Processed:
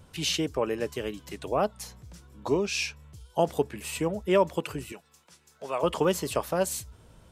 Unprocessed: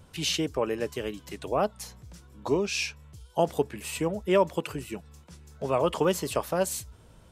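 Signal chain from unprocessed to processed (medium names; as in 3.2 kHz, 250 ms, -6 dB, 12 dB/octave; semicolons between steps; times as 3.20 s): 4.92–5.83 s: high-pass 930 Hz 6 dB/octave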